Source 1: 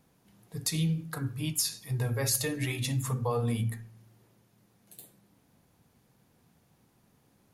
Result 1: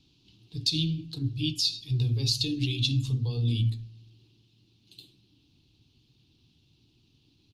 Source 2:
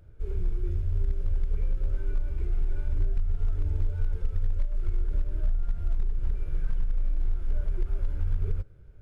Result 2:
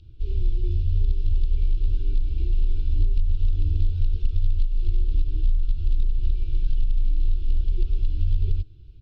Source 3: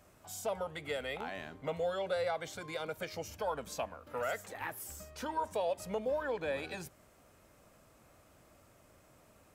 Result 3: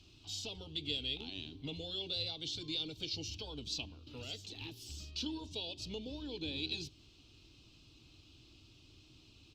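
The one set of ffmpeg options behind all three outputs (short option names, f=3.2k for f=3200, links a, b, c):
-filter_complex "[0:a]acrossover=split=740|2900[a][b][c];[b]acompressor=threshold=-57dB:ratio=8[d];[a][d][c]amix=inputs=3:normalize=0,firequalizer=gain_entry='entry(120,0);entry(190,-11);entry(310,1);entry(560,-25);entry(840,-16);entry(1900,-20);entry(2700,6);entry(4100,10);entry(6800,-8);entry(9900,-23)':delay=0.05:min_phase=1,volume=5.5dB" -ar 48000 -c:a libopus -b:a 48k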